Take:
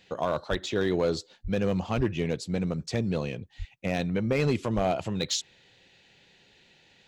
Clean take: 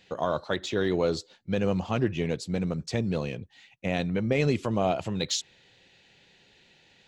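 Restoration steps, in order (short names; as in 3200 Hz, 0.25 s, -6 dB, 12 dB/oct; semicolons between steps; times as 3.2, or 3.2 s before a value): clip repair -17.5 dBFS; de-plosive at 0.5/1.43/1.96/3.58/4.75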